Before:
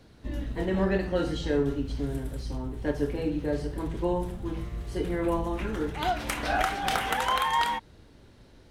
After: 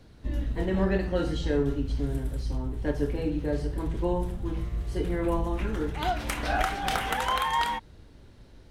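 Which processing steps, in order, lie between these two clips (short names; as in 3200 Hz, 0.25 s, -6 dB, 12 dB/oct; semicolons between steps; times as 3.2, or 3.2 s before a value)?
low shelf 94 Hz +7.5 dB; gain -1 dB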